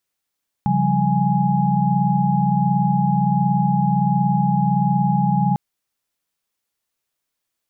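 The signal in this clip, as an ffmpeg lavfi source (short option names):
-f lavfi -i "aevalsrc='0.0944*(sin(2*PI*138.59*t)+sin(2*PI*174.61*t)+sin(2*PI*196*t)+sin(2*PI*830.61*t))':d=4.9:s=44100"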